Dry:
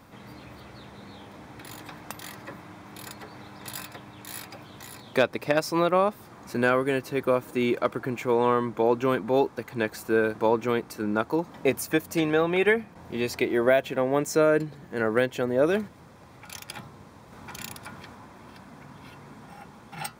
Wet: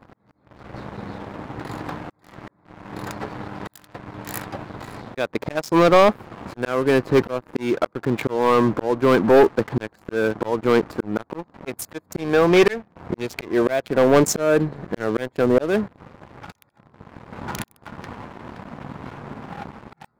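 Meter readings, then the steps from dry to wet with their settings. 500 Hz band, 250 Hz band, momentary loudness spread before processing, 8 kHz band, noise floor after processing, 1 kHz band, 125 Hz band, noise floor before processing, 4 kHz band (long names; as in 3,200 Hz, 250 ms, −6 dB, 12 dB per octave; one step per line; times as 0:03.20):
+5.0 dB, +6.0 dB, 20 LU, +5.5 dB, −63 dBFS, +5.0 dB, +7.0 dB, −50 dBFS, +4.0 dB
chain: adaptive Wiener filter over 15 samples
volume swells 474 ms
leveller curve on the samples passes 3
level +3.5 dB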